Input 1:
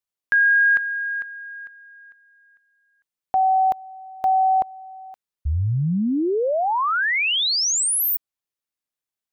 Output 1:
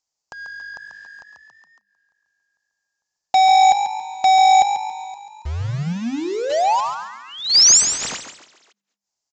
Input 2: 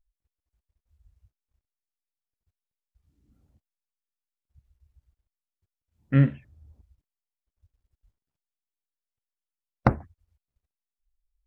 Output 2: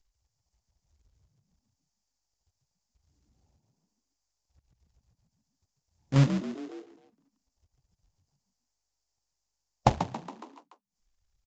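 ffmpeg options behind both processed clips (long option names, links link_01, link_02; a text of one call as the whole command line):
ffmpeg -i in.wav -filter_complex "[0:a]firequalizer=gain_entry='entry(140,0);entry(240,-4);entry(850,10);entry(1500,-14);entry(2300,-27);entry(4700,13)':delay=0.05:min_phase=1,asplit=2[link_01][link_02];[link_02]adelay=290,highpass=300,lowpass=3400,asoftclip=type=hard:threshold=-10dB,volume=-22dB[link_03];[link_01][link_03]amix=inputs=2:normalize=0,adynamicequalizer=threshold=0.02:dfrequency=210:dqfactor=1.8:tfrequency=210:tqfactor=1.8:attack=5:release=100:ratio=0.375:range=1.5:mode=boostabove:tftype=bell,agate=range=-52dB:threshold=-39dB:ratio=3:release=113:detection=rms,acrusher=bits=2:mode=log:mix=0:aa=0.000001,asplit=2[link_04][link_05];[link_05]asplit=4[link_06][link_07][link_08][link_09];[link_06]adelay=139,afreqshift=50,volume=-9dB[link_10];[link_07]adelay=278,afreqshift=100,volume=-17.4dB[link_11];[link_08]adelay=417,afreqshift=150,volume=-25.8dB[link_12];[link_09]adelay=556,afreqshift=200,volume=-34.2dB[link_13];[link_10][link_11][link_12][link_13]amix=inputs=4:normalize=0[link_14];[link_04][link_14]amix=inputs=2:normalize=0,acompressor=mode=upward:threshold=-25dB:ratio=2.5:attack=0.51:release=127:knee=2.83:detection=peak,aresample=16000,aresample=44100,volume=-4dB" out.wav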